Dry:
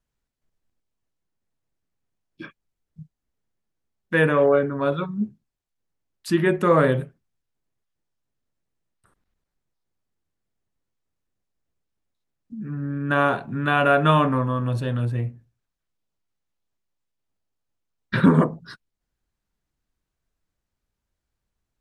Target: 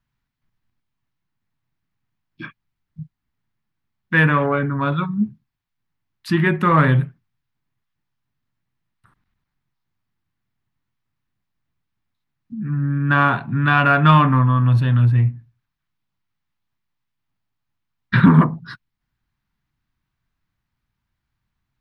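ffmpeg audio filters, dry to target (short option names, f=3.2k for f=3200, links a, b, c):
-af "acontrast=33,equalizer=f=125:t=o:w=1:g=9,equalizer=f=250:t=o:w=1:g=3,equalizer=f=500:t=o:w=1:g=-10,equalizer=f=1k:t=o:w=1:g=6,equalizer=f=2k:t=o:w=1:g=5,equalizer=f=4k:t=o:w=1:g=3,equalizer=f=8k:t=o:w=1:g=-9,volume=-4dB"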